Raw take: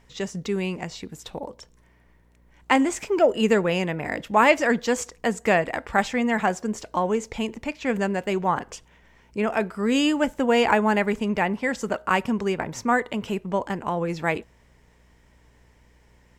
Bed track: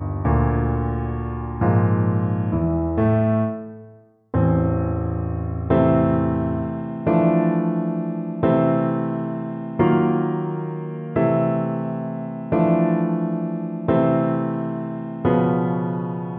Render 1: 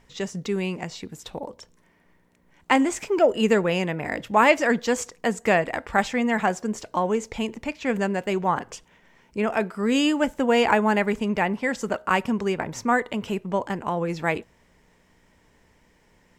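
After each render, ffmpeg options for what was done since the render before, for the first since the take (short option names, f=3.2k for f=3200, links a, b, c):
-af "bandreject=f=60:t=h:w=4,bandreject=f=120:t=h:w=4"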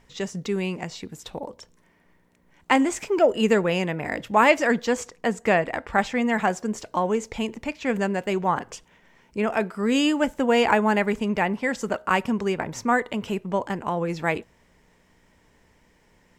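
-filter_complex "[0:a]asettb=1/sr,asplit=3[a][b][c];[a]atrim=end=4.854[d];[b]atrim=start=4.85:end=6.16,asetpts=PTS-STARTPTS,afade=t=in:d=0.004:c=qsin,afade=t=out:st=1.306:d=0.004:c=qsin,highshelf=f=5.4k:g=-6[e];[c]atrim=start=6.156[f];[d][e]acrossfade=d=0.004:c1=hsin:c2=qsin[g];[g][f]acrossfade=d=0.004:c1=qsin:c2=hsin"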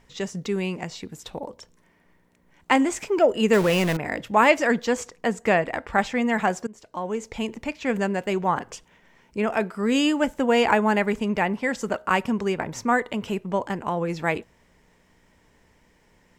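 -filter_complex "[0:a]asettb=1/sr,asplit=3[a][b][c];[a]atrim=end=3.534[d];[b]atrim=start=3.53:end=3.97,asetpts=PTS-STARTPTS,afade=t=in:d=0.004:c=qsin,afade=t=out:st=0.436:d=0.004:c=qsin,aeval=exprs='val(0)+0.5*0.0668*sgn(val(0))':c=same[e];[c]atrim=start=3.966[f];[d][e]acrossfade=d=0.004:c1=hsin:c2=qsin[g];[g][f]acrossfade=d=0.004:c1=qsin:c2=hsin,asplit=2[h][i];[h]atrim=end=6.67,asetpts=PTS-STARTPTS,afade=t=out:st=6.666:d=0.004:c=hsin:silence=0.1[j];[i]atrim=start=6.67,asetpts=PTS-STARTPTS,afade=t=in:d=0.84:silence=0.1[k];[j][k]concat=n=2:v=0:a=1"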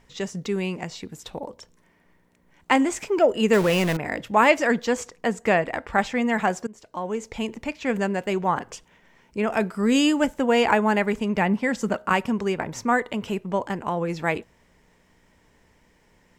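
-filter_complex "[0:a]asettb=1/sr,asplit=3[a][b][c];[a]atrim=end=9.514[d];[b]atrim=start=9.51:end=10.27,asetpts=PTS-STARTPTS,afade=t=in:d=0.004:c=qsin,afade=t=out:st=0.756:d=0.004:c=qsin,bass=f=250:g=5,treble=f=4k:g=4[e];[c]atrim=start=10.266[f];[d][e]acrossfade=d=0.004:c1=hsin:c2=qsin[g];[g][f]acrossfade=d=0.004:c1=qsin:c2=hsin,asettb=1/sr,asplit=3[h][i][j];[h]atrim=end=11.374[k];[i]atrim=start=11.37:end=12.13,asetpts=PTS-STARTPTS,afade=t=in:d=0.004:c=qsin,afade=t=out:st=0.756:d=0.004:c=qsin,equalizer=f=200:t=o:w=0.77:g=6[l];[j]atrim=start=12.126[m];[k][l]acrossfade=d=0.004:c1=hsin:c2=qsin[n];[n][m]acrossfade=d=0.004:c1=qsin:c2=hsin"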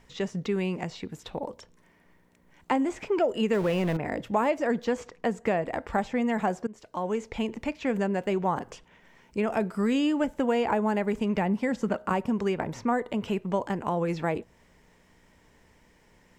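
-filter_complex "[0:a]acrossover=split=970|4100[a][b][c];[a]acompressor=threshold=-23dB:ratio=4[d];[b]acompressor=threshold=-38dB:ratio=4[e];[c]acompressor=threshold=-55dB:ratio=4[f];[d][e][f]amix=inputs=3:normalize=0"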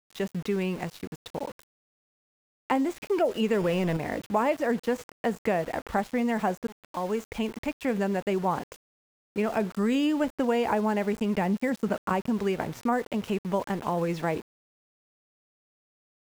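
-af "aeval=exprs='val(0)*gte(abs(val(0)),0.0106)':c=same"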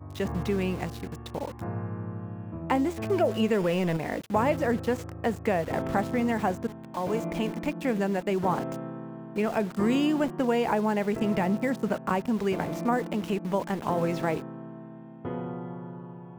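-filter_complex "[1:a]volume=-16dB[a];[0:a][a]amix=inputs=2:normalize=0"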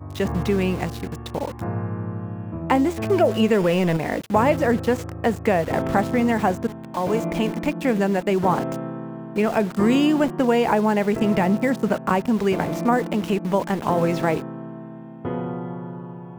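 -af "volume=6.5dB"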